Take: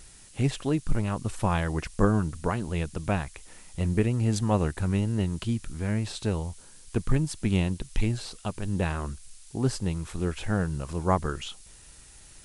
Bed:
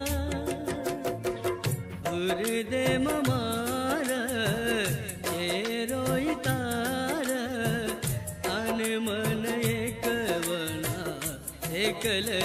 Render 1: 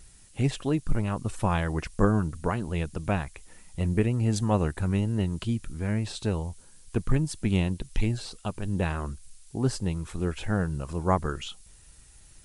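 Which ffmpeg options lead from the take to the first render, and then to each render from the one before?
ffmpeg -i in.wav -af "afftdn=noise_reduction=6:noise_floor=-51" out.wav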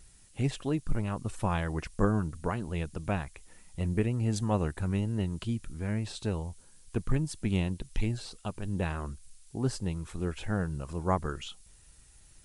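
ffmpeg -i in.wav -af "volume=-4dB" out.wav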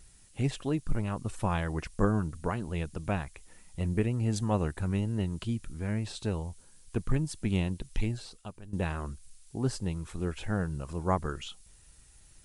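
ffmpeg -i in.wav -filter_complex "[0:a]asplit=2[link_01][link_02];[link_01]atrim=end=8.73,asetpts=PTS-STARTPTS,afade=type=out:start_time=8:duration=0.73:silence=0.188365[link_03];[link_02]atrim=start=8.73,asetpts=PTS-STARTPTS,afade=type=in:duration=0.004:curve=hsin:silence=0.188365[link_04];[link_03][link_04]concat=n=2:v=0:a=1" out.wav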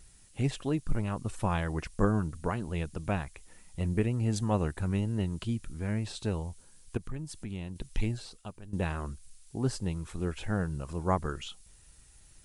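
ffmpeg -i in.wav -filter_complex "[0:a]asettb=1/sr,asplit=3[link_01][link_02][link_03];[link_01]atrim=end=6.974[link_04];[link_02]atrim=start=6.97:end=7.76,asetpts=PTS-STARTPTS,afade=type=in:duration=0.004:curve=qsin,afade=type=out:start_time=0.786:duration=0.004:curve=qsin,acompressor=threshold=-41dB:ratio=2:attack=3.2:release=140:knee=1:detection=peak[link_05];[link_03]atrim=start=7.756[link_06];[link_04][link_05]acrossfade=duration=0.004:curve1=hsin:curve2=qsin[link_07];[link_07][link_06]acrossfade=duration=0.004:curve1=qsin:curve2=hsin" out.wav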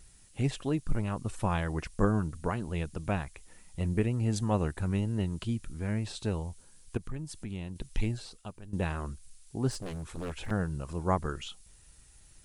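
ffmpeg -i in.wav -filter_complex "[0:a]asettb=1/sr,asplit=3[link_01][link_02][link_03];[link_01]atrim=end=9.714[link_04];[link_02]atrim=start=9.71:end=10.51,asetpts=PTS-STARTPTS,afade=type=in:duration=0.004:curve=qsin,afade=type=out:start_time=0.796:duration=0.004:curve=qsin,aeval=exprs='0.0266*(abs(mod(val(0)/0.0266+3,4)-2)-1)':channel_layout=same[link_05];[link_03]atrim=start=10.506[link_06];[link_04][link_05]acrossfade=duration=0.004:curve1=hsin:curve2=qsin[link_07];[link_07][link_06]acrossfade=duration=0.004:curve1=qsin:curve2=hsin" out.wav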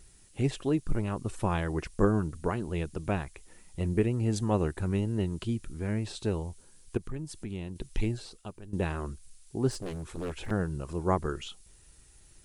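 ffmpeg -i in.wav -af "equalizer=frequency=370:width=2.3:gain=6" out.wav

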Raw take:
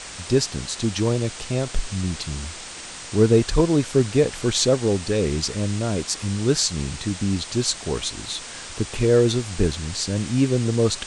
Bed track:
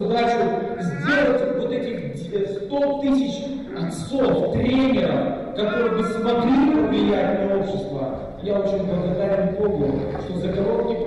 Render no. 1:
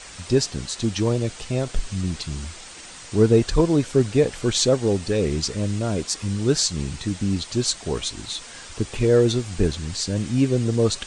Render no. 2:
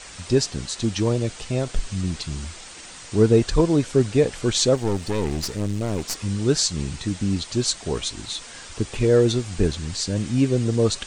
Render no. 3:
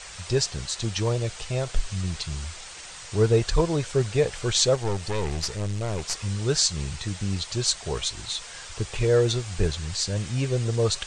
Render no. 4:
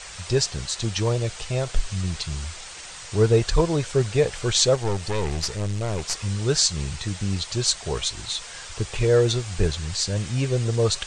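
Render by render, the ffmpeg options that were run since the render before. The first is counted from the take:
ffmpeg -i in.wav -af "afftdn=noise_reduction=6:noise_floor=-37" out.wav
ffmpeg -i in.wav -filter_complex "[0:a]asettb=1/sr,asplit=3[link_01][link_02][link_03];[link_01]atrim=end=4.754[link_04];[link_02]atrim=start=4.75:end=6.19,asetpts=PTS-STARTPTS,afade=type=in:duration=0.004:curve=qsin,afade=type=out:start_time=1.436:duration=0.004:curve=qsin,aeval=exprs='clip(val(0),-1,0.0251)':channel_layout=same[link_05];[link_03]atrim=start=6.186[link_06];[link_04][link_05]acrossfade=duration=0.004:curve1=hsin:curve2=qsin[link_07];[link_07][link_06]acrossfade=duration=0.004:curve1=qsin:curve2=hsin" out.wav
ffmpeg -i in.wav -af "lowpass=frequency=9300:width=0.5412,lowpass=frequency=9300:width=1.3066,equalizer=frequency=260:width=1.7:gain=-14" out.wav
ffmpeg -i in.wav -af "volume=2dB" out.wav

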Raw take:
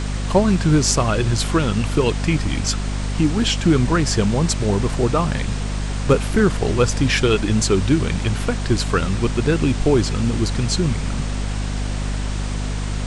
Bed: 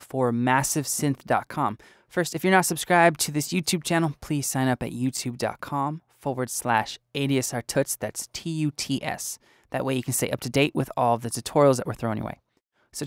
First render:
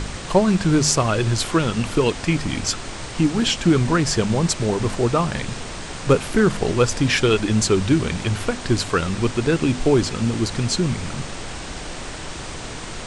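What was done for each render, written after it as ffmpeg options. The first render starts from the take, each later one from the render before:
ffmpeg -i in.wav -af "bandreject=frequency=50:width_type=h:width=4,bandreject=frequency=100:width_type=h:width=4,bandreject=frequency=150:width_type=h:width=4,bandreject=frequency=200:width_type=h:width=4,bandreject=frequency=250:width_type=h:width=4" out.wav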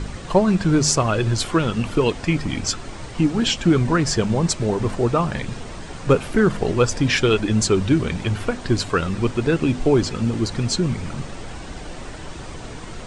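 ffmpeg -i in.wav -af "afftdn=noise_reduction=8:noise_floor=-33" out.wav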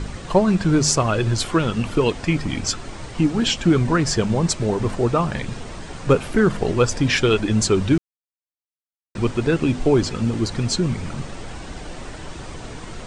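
ffmpeg -i in.wav -filter_complex "[0:a]asplit=3[link_01][link_02][link_03];[link_01]atrim=end=7.98,asetpts=PTS-STARTPTS,afade=type=out:start_time=7.976:duration=0.004:curve=hsin[link_04];[link_02]atrim=start=7.98:end=9.15,asetpts=PTS-STARTPTS,volume=0[link_05];[link_03]atrim=start=9.15,asetpts=PTS-STARTPTS,afade=type=in:duration=0.004:curve=hsin[link_06];[link_04][link_05][link_06]concat=n=3:v=0:a=1" out.wav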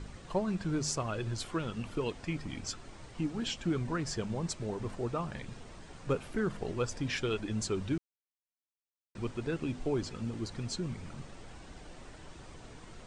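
ffmpeg -i in.wav -af "volume=-15.5dB" out.wav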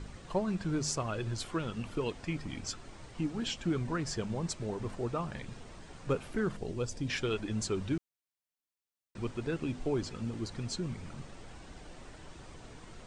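ffmpeg -i in.wav -filter_complex "[0:a]asettb=1/sr,asplit=3[link_01][link_02][link_03];[link_01]atrim=end=6.564[link_04];[link_02]atrim=start=6.56:end=7.1,asetpts=PTS-STARTPTS,afade=type=in:duration=0.004:curve=qsin,afade=type=out:start_time=0.536:duration=0.004:curve=qsin,equalizer=frequency=1400:width_type=o:width=2.1:gain=-8.5[link_05];[link_03]atrim=start=7.096[link_06];[link_04][link_05]acrossfade=duration=0.004:curve1=hsin:curve2=qsin[link_07];[link_07][link_06]acrossfade=duration=0.004:curve1=qsin:curve2=hsin" out.wav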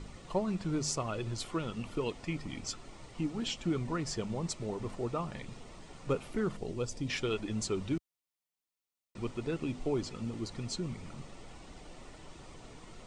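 ffmpeg -i in.wav -af "equalizer=frequency=74:width_type=o:width=1.3:gain=-4,bandreject=frequency=1600:width=6.6" out.wav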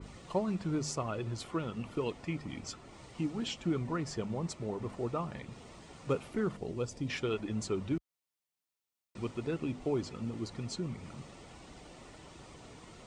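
ffmpeg -i in.wav -af "highpass=49,adynamicequalizer=threshold=0.002:dfrequency=2600:dqfactor=0.7:tfrequency=2600:tqfactor=0.7:attack=5:release=100:ratio=0.375:range=3.5:mode=cutabove:tftype=highshelf" out.wav

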